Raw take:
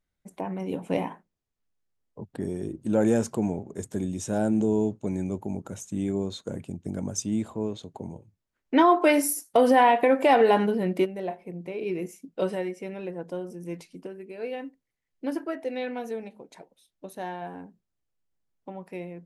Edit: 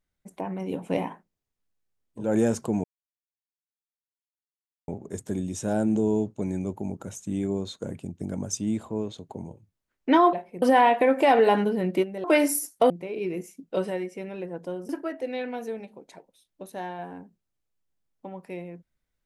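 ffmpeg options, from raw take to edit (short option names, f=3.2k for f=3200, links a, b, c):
-filter_complex "[0:a]asplit=8[a][b][c][d][e][f][g][h];[a]atrim=end=2.37[i];[b]atrim=start=2.82:end=3.53,asetpts=PTS-STARTPTS,afade=t=out:st=0.706:d=0.004:c=hsin,apad=pad_dur=2.04[j];[c]atrim=start=3.53:end=8.982,asetpts=PTS-STARTPTS,afade=t=in:d=0.004:c=hsin[k];[d]atrim=start=11.258:end=11.552[l];[e]atrim=start=9.638:end=11.262[m];[f]atrim=start=8.978:end=9.642[n];[g]atrim=start=11.548:end=13.542[o];[h]atrim=start=15.318[p];[j][k]concat=n=2:v=0:a=1[q];[i][q]acrossfade=d=0.24:c1=tri:c2=tri[r];[r][l]acrossfade=d=0.004:c1=hsin:c2=hsin[s];[s][m]acrossfade=d=0.004:c1=hsin:c2=hsin[t];[t][n]acrossfade=d=0.004:c1=hsin:c2=hsin[u];[u][o]acrossfade=d=0.004:c1=hsin:c2=hsin[v];[v][p]acrossfade=d=0.004:c1=hsin:c2=hsin"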